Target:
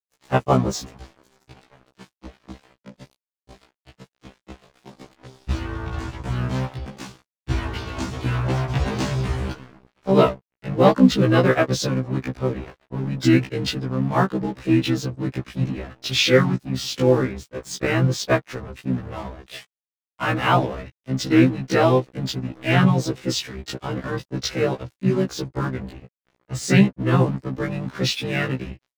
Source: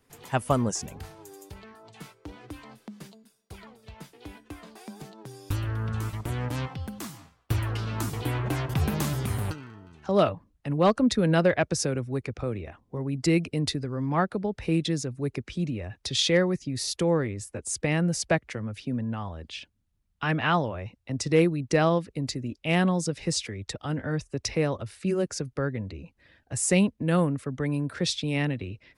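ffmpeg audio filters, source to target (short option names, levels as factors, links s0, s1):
-filter_complex "[0:a]lowpass=f=6800:w=0.5412,lowpass=f=6800:w=1.3066,asplit=2[s0][s1];[s1]adelay=1224,volume=0.0562,highshelf=f=4000:g=-27.6[s2];[s0][s2]amix=inputs=2:normalize=0,asplit=3[s3][s4][s5];[s4]asetrate=29433,aresample=44100,atempo=1.49831,volume=0.316[s6];[s5]asetrate=33038,aresample=44100,atempo=1.33484,volume=0.708[s7];[s3][s6][s7]amix=inputs=3:normalize=0,highpass=f=51:p=1,aeval=exprs='sgn(val(0))*max(abs(val(0))-0.00891,0)':c=same,afftfilt=real='re*1.73*eq(mod(b,3),0)':imag='im*1.73*eq(mod(b,3),0)':win_size=2048:overlap=0.75,volume=2.24"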